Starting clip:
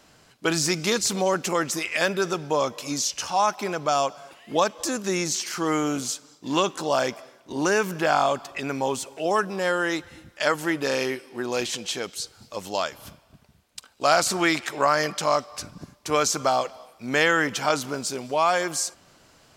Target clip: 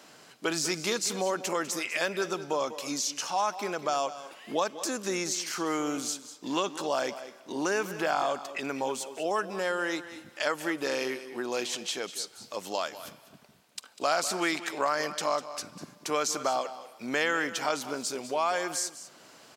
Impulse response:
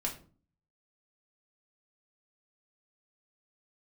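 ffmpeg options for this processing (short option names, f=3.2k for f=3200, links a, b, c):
-af "highpass=220,acompressor=threshold=-45dB:ratio=1.5,aecho=1:1:198:0.2,volume=3dB"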